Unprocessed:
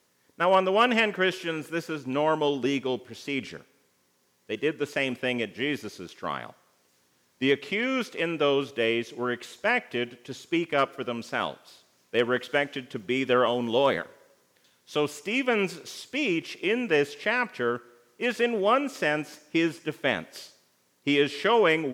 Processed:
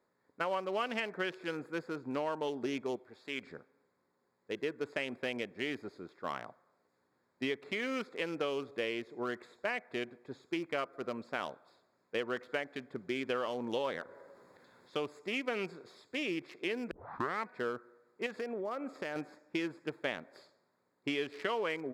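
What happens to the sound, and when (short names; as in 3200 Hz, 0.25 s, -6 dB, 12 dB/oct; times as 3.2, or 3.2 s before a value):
2.96–3.47 low shelf 420 Hz -9 dB
14.02–15.11 upward compressor, threshold -37 dBFS
16.91 tape start 0.55 s
18.26–19.16 compressor, threshold -28 dBFS
whole clip: Wiener smoothing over 15 samples; low shelf 240 Hz -7.5 dB; compressor 5:1, threshold -28 dBFS; gain -3.5 dB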